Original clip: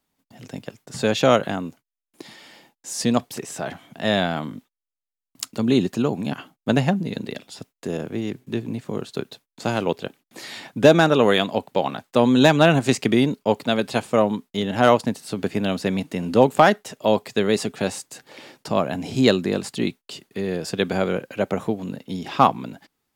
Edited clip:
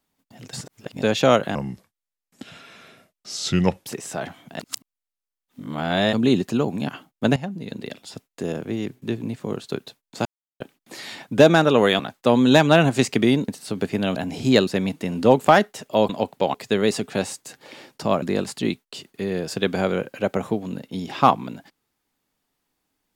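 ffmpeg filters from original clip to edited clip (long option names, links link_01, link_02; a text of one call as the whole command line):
ffmpeg -i in.wav -filter_complex "[0:a]asplit=17[link_01][link_02][link_03][link_04][link_05][link_06][link_07][link_08][link_09][link_10][link_11][link_12][link_13][link_14][link_15][link_16][link_17];[link_01]atrim=end=0.532[link_18];[link_02]atrim=start=0.528:end=1.022,asetpts=PTS-STARTPTS,areverse[link_19];[link_03]atrim=start=1.018:end=1.554[link_20];[link_04]atrim=start=1.55:end=3.3,asetpts=PTS-STARTPTS,asetrate=33516,aresample=44100,atrim=end_sample=101546,asetpts=PTS-STARTPTS[link_21];[link_05]atrim=start=3.296:end=4.042[link_22];[link_06]atrim=start=4.038:end=5.582,asetpts=PTS-STARTPTS,areverse[link_23];[link_07]atrim=start=5.578:end=6.81,asetpts=PTS-STARTPTS,afade=type=out:start_time=1.228:duration=0.004:curve=hsin:silence=0.188365[link_24];[link_08]atrim=start=6.81:end=9.7,asetpts=PTS-STARTPTS,afade=type=in:duration=0.66:silence=0.188365,afade=type=out:start_time=2.886:duration=0.004:curve=hsin[link_25];[link_09]atrim=start=9.7:end=10.05,asetpts=PTS-STARTPTS,volume=0[link_26];[link_10]atrim=start=10.05:end=11.442,asetpts=PTS-STARTPTS,afade=type=in:duration=0.004:curve=hsin[link_27];[link_11]atrim=start=11.888:end=13.382[link_28];[link_12]atrim=start=15.098:end=15.782[link_29];[link_13]atrim=start=18.878:end=19.392[link_30];[link_14]atrim=start=15.778:end=17.202[link_31];[link_15]atrim=start=11.438:end=11.892[link_32];[link_16]atrim=start=17.198:end=18.882[link_33];[link_17]atrim=start=19.388[link_34];[link_18][link_19]acrossfade=duration=0.004:curve1=hsin:curve2=hsin[link_35];[link_35][link_20]acrossfade=duration=0.004:curve1=hsin:curve2=hsin[link_36];[link_36][link_21]acrossfade=duration=0.004:curve1=hsin:curve2=hsin[link_37];[link_37][link_22]acrossfade=duration=0.004:curve1=hsin:curve2=hsin[link_38];[link_38][link_23]acrossfade=duration=0.004:curve1=hsin:curve2=hsin[link_39];[link_24][link_25][link_26][link_27]concat=n=4:v=0:a=1[link_40];[link_39][link_40]acrossfade=duration=0.004:curve1=hsin:curve2=hsin[link_41];[link_41][link_28]acrossfade=duration=0.004:curve1=hsin:curve2=hsin[link_42];[link_42][link_29]acrossfade=duration=0.004:curve1=hsin:curve2=hsin[link_43];[link_43][link_30]acrossfade=duration=0.004:curve1=hsin:curve2=hsin[link_44];[link_44][link_31]acrossfade=duration=0.004:curve1=hsin:curve2=hsin[link_45];[link_45][link_32]acrossfade=duration=0.004:curve1=hsin:curve2=hsin[link_46];[link_46][link_33]acrossfade=duration=0.004:curve1=hsin:curve2=hsin[link_47];[link_47][link_34]acrossfade=duration=0.004:curve1=hsin:curve2=hsin" out.wav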